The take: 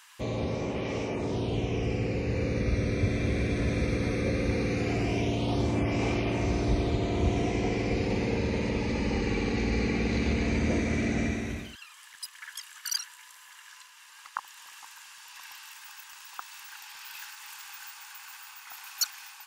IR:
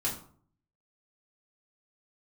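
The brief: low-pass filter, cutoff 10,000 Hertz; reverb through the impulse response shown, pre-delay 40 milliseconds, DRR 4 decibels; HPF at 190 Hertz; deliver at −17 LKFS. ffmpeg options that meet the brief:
-filter_complex "[0:a]highpass=190,lowpass=10000,asplit=2[link_01][link_02];[1:a]atrim=start_sample=2205,adelay=40[link_03];[link_02][link_03]afir=irnorm=-1:irlink=0,volume=-9dB[link_04];[link_01][link_04]amix=inputs=2:normalize=0,volume=13dB"

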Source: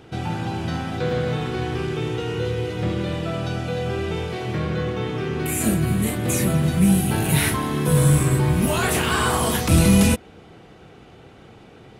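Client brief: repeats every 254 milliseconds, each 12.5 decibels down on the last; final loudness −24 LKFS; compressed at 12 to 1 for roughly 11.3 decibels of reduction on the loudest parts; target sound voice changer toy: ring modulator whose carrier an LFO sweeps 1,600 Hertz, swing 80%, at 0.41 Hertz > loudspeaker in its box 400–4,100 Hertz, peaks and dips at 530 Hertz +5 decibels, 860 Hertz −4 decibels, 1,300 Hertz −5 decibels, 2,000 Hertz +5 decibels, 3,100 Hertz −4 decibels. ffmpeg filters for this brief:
ffmpeg -i in.wav -af "acompressor=threshold=-23dB:ratio=12,aecho=1:1:254|508|762:0.237|0.0569|0.0137,aeval=exprs='val(0)*sin(2*PI*1600*n/s+1600*0.8/0.41*sin(2*PI*0.41*n/s))':channel_layout=same,highpass=400,equalizer=frequency=530:width_type=q:width=4:gain=5,equalizer=frequency=860:width_type=q:width=4:gain=-4,equalizer=frequency=1300:width_type=q:width=4:gain=-5,equalizer=frequency=2000:width_type=q:width=4:gain=5,equalizer=frequency=3100:width_type=q:width=4:gain=-4,lowpass=frequency=4100:width=0.5412,lowpass=frequency=4100:width=1.3066,volume=5dB" out.wav

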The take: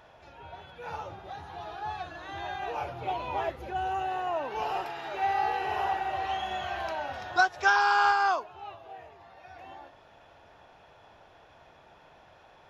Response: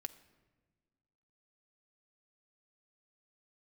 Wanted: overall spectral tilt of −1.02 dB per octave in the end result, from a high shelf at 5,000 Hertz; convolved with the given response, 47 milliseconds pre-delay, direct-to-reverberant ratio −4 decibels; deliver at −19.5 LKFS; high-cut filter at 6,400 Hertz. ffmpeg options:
-filter_complex "[0:a]lowpass=6400,highshelf=frequency=5000:gain=-7,asplit=2[link_01][link_02];[1:a]atrim=start_sample=2205,adelay=47[link_03];[link_02][link_03]afir=irnorm=-1:irlink=0,volume=7dB[link_04];[link_01][link_04]amix=inputs=2:normalize=0,volume=5dB"

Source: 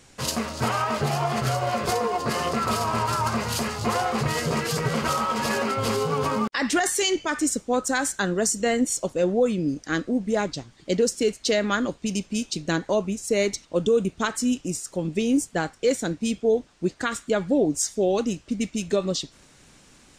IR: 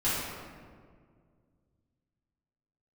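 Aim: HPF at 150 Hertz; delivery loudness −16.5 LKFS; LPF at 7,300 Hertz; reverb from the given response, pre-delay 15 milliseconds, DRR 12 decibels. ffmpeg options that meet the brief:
-filter_complex "[0:a]highpass=150,lowpass=7300,asplit=2[link_01][link_02];[1:a]atrim=start_sample=2205,adelay=15[link_03];[link_02][link_03]afir=irnorm=-1:irlink=0,volume=-22.5dB[link_04];[link_01][link_04]amix=inputs=2:normalize=0,volume=8.5dB"

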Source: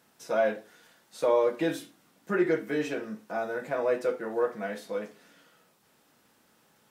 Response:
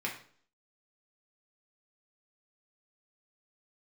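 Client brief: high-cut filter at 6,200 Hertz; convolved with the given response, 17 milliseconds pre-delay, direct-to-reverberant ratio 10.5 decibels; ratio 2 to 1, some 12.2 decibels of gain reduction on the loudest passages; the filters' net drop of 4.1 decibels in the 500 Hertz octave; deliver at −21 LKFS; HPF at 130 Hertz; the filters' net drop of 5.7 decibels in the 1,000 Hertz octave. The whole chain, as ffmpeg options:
-filter_complex "[0:a]highpass=130,lowpass=6200,equalizer=frequency=500:width_type=o:gain=-3,equalizer=frequency=1000:width_type=o:gain=-7,acompressor=threshold=-46dB:ratio=2,asplit=2[link_01][link_02];[1:a]atrim=start_sample=2205,adelay=17[link_03];[link_02][link_03]afir=irnorm=-1:irlink=0,volume=-15dB[link_04];[link_01][link_04]amix=inputs=2:normalize=0,volume=22dB"

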